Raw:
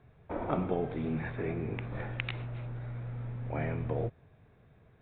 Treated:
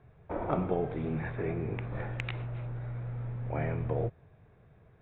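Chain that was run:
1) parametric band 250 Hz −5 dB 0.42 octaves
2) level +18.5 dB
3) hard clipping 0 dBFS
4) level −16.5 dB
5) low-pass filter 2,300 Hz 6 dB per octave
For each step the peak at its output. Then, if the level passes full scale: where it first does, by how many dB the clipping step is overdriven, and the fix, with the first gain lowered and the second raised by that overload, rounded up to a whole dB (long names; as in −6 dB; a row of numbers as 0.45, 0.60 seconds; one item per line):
−13.0, +5.5, 0.0, −16.5, −16.5 dBFS
step 2, 5.5 dB
step 2 +12.5 dB, step 4 −10.5 dB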